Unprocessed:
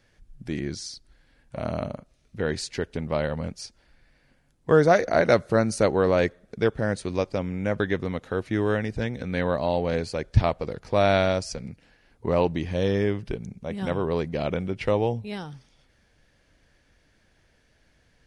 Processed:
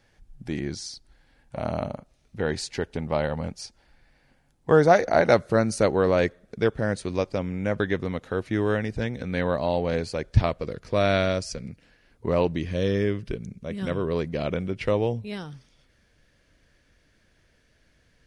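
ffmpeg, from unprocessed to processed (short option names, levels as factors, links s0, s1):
-af "asetnsamples=n=441:p=0,asendcmd='5.37 equalizer g -1;10.46 equalizer g -11.5;11.7 equalizer g -5;12.56 equalizer g -14.5;14.15 equalizer g -6',equalizer=f=820:t=o:w=0.33:g=6"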